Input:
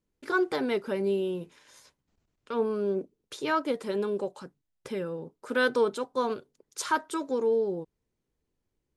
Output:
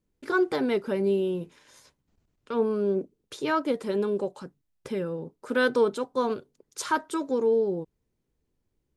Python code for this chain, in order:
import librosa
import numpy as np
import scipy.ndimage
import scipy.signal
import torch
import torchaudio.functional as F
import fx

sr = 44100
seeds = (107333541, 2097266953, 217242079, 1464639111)

y = fx.low_shelf(x, sr, hz=430.0, db=5.0)